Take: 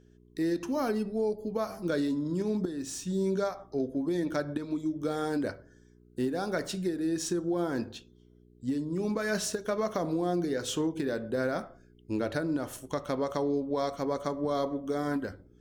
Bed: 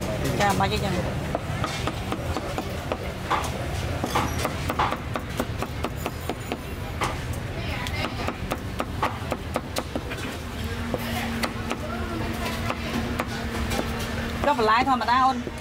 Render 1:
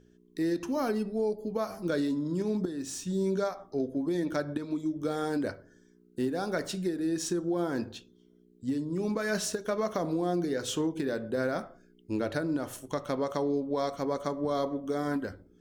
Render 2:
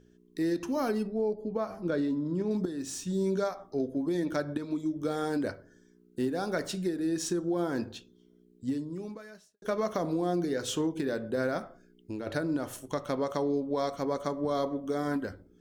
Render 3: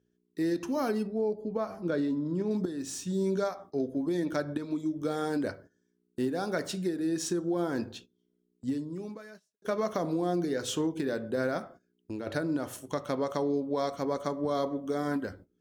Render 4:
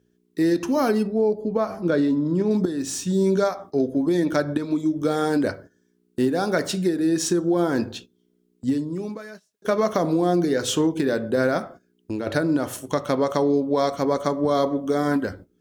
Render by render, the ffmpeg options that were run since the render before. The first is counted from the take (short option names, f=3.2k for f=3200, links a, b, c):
-af "bandreject=f=60:t=h:w=4,bandreject=f=120:t=h:w=4"
-filter_complex "[0:a]asettb=1/sr,asplit=3[a][b][c];[a]atrim=end=1.074[d];[b]atrim=start=1.07:end=2.51,asetpts=PTS-STARTPTS,afade=t=in:d=0.004:c=qsin,afade=t=out:st=1.436:d=0.004:c=qsin,lowpass=f=1.9k:p=1[e];[c]atrim=start=2.506[f];[d][e]acrossfade=d=0.004:c1=hsin:c2=qsin[g];[g][f]acrossfade=d=0.004:c1=qsin:c2=hsin,asettb=1/sr,asplit=3[h][i][j];[h]atrim=end=11.584[k];[i]atrim=start=11.58:end=12.27,asetpts=PTS-STARTPTS,afade=t=in:d=0.004:c=qsin,afade=t=out:st=0.686:d=0.004:c=qsin,acompressor=threshold=-33dB:ratio=6:attack=3.2:release=140:knee=1:detection=peak[l];[j]atrim=start=12.266[m];[k][l]acrossfade=d=0.004:c1=hsin:c2=qsin[n];[n][m]acrossfade=d=0.004:c1=qsin:c2=hsin,asplit=2[o][p];[o]atrim=end=9.62,asetpts=PTS-STARTPTS,afade=t=out:st=8.68:d=0.94:c=qua[q];[p]atrim=start=9.62,asetpts=PTS-STARTPTS,afade=t=in:d=0.004:c=hsin[r];[q][r]concat=n=2:v=0:a=1"
-af "highpass=61,agate=range=-14dB:threshold=-50dB:ratio=16:detection=peak"
-af "volume=9dB"